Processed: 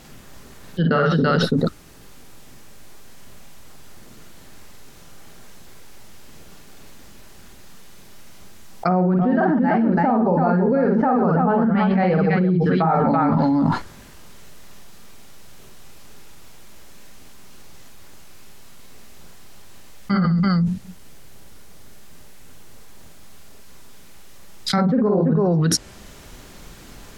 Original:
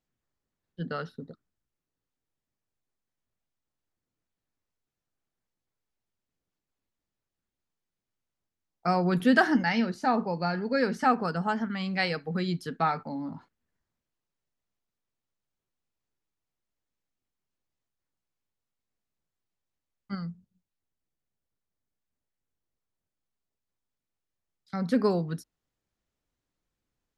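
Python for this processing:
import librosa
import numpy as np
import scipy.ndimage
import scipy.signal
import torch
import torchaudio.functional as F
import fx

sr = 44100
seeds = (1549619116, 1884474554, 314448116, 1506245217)

y = fx.echo_multitap(x, sr, ms=(44, 49, 131, 334), db=(-6.0, -4.0, -15.5, -6.0))
y = fx.env_lowpass_down(y, sr, base_hz=880.0, full_db=-23.5)
y = fx.env_flatten(y, sr, amount_pct=100)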